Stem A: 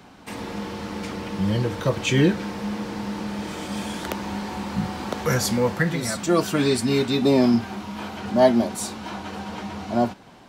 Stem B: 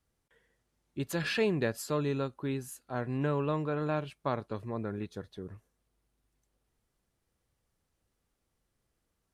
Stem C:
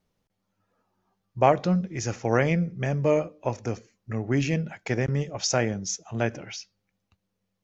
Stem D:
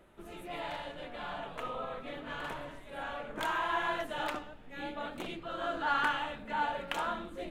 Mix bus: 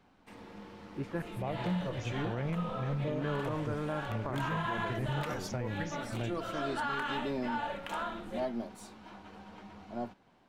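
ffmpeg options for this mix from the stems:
-filter_complex "[0:a]aeval=exprs='if(lt(val(0),0),0.708*val(0),val(0))':c=same,bass=f=250:g=-1,treble=f=4000:g=-7,volume=0.168[s0];[1:a]lowpass=f=2100:w=0.5412,lowpass=f=2100:w=1.3066,volume=0.708,asplit=3[s1][s2][s3];[s1]atrim=end=1.22,asetpts=PTS-STARTPTS,afade=t=out:st=1.216:d=0.004:c=hsin[s4];[s2]atrim=start=1.22:end=3.06,asetpts=PTS-STARTPTS,volume=0[s5];[s3]atrim=start=3.06,asetpts=PTS-STARTPTS,afade=t=in:d=0.004:c=hsin[s6];[s4][s5][s6]concat=n=3:v=0:a=1[s7];[2:a]aemphasis=mode=reproduction:type=bsi,volume=0.2[s8];[3:a]adelay=950,volume=0.944[s9];[s0][s7][s8][s9]amix=inputs=4:normalize=0,alimiter=level_in=1.12:limit=0.0631:level=0:latency=1:release=90,volume=0.891"

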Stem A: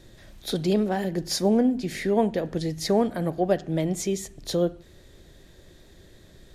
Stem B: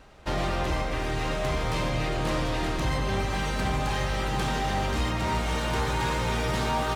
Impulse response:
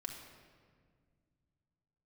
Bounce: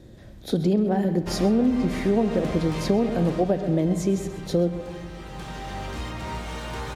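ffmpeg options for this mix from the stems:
-filter_complex "[0:a]highpass=52,tiltshelf=f=880:g=6.5,volume=0.794,asplit=3[s0][s1][s2];[s1]volume=0.631[s3];[s2]volume=0.299[s4];[1:a]adelay=1000,volume=1.78,afade=t=out:st=3.07:d=0.57:silence=0.298538,afade=t=in:st=5.12:d=0.77:silence=0.334965[s5];[2:a]atrim=start_sample=2205[s6];[s3][s6]afir=irnorm=-1:irlink=0[s7];[s4]aecho=0:1:131:1[s8];[s0][s5][s7][s8]amix=inputs=4:normalize=0,acompressor=threshold=0.141:ratio=6"

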